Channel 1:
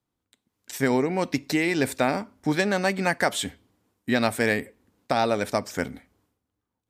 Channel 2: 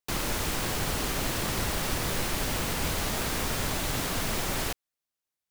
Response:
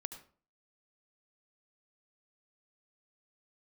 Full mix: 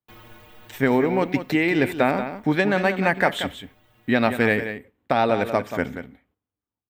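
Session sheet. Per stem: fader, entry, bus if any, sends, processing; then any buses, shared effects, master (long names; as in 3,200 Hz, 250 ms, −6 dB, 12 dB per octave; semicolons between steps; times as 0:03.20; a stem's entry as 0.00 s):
+2.0 dB, 0.00 s, send −15 dB, echo send −9 dB, noise gate −59 dBFS, range −13 dB
−4.0 dB, 0.00 s, no send, no echo send, stiff-string resonator 110 Hz, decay 0.26 s, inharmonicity 0.008; automatic ducking −15 dB, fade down 1.95 s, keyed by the first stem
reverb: on, RT60 0.45 s, pre-delay 68 ms
echo: single-tap delay 183 ms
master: flat-topped bell 7,300 Hz −14 dB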